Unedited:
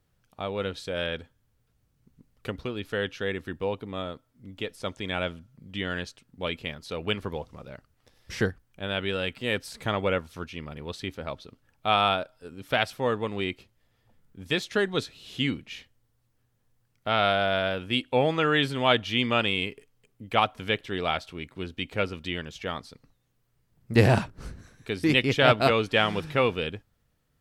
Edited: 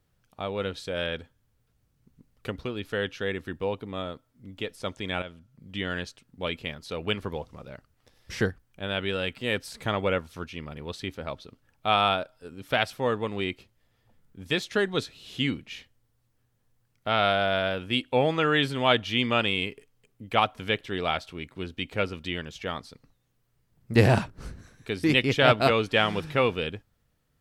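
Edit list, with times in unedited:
0:05.22–0:05.71: fade in, from −12 dB

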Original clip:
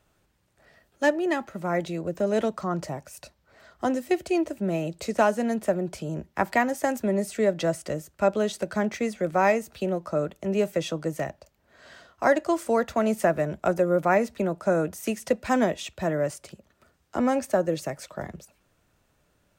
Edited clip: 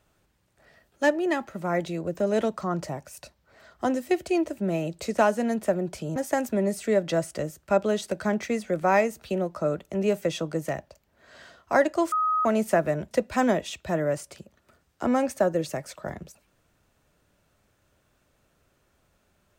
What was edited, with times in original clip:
0:06.16–0:06.67: remove
0:12.63–0:12.96: beep over 1,260 Hz −21 dBFS
0:13.62–0:15.24: remove

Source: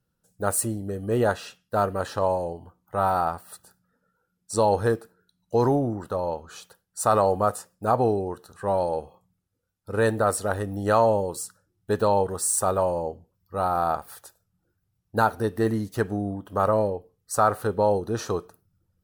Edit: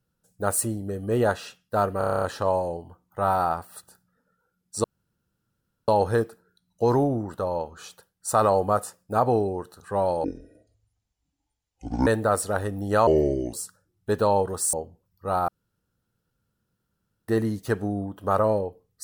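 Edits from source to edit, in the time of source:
0:01.98: stutter 0.03 s, 9 plays
0:04.60: splice in room tone 1.04 s
0:08.96–0:10.02: play speed 58%
0:11.02–0:11.34: play speed 69%
0:12.54–0:13.02: remove
0:13.77–0:15.57: fill with room tone

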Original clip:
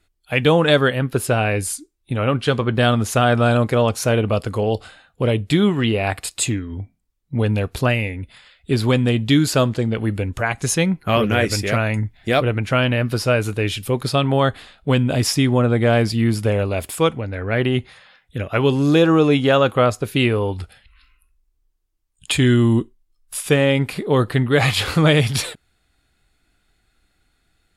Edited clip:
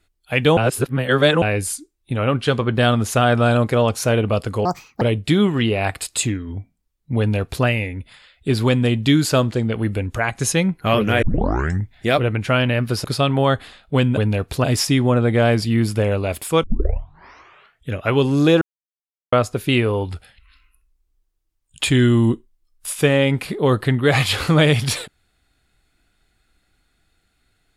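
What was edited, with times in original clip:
0:00.57–0:01.42: reverse
0:04.65–0:05.24: play speed 162%
0:07.41–0:07.88: duplicate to 0:15.12
0:11.45: tape start 0.61 s
0:13.27–0:13.99: remove
0:17.11: tape start 1.27 s
0:19.09–0:19.80: silence

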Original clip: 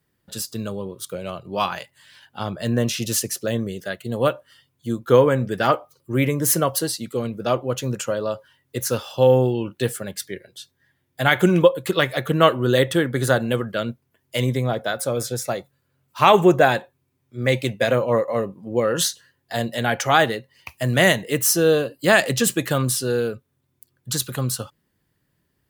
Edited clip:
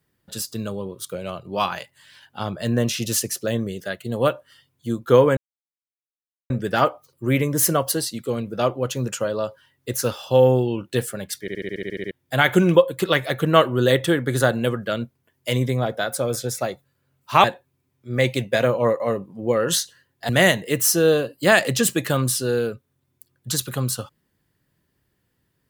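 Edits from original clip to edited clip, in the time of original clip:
0:05.37: splice in silence 1.13 s
0:10.28: stutter in place 0.07 s, 10 plays
0:16.31–0:16.72: remove
0:19.57–0:20.90: remove

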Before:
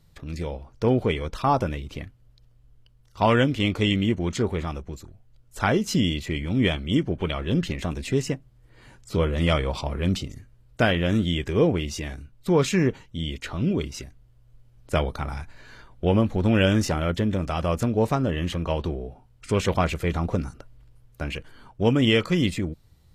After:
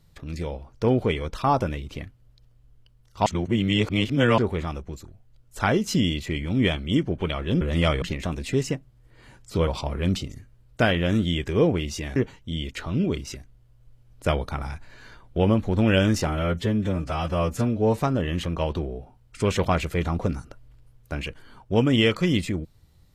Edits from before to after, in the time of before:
0:03.26–0:04.38: reverse
0:09.26–0:09.67: move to 0:07.61
0:12.16–0:12.83: remove
0:16.94–0:18.10: time-stretch 1.5×

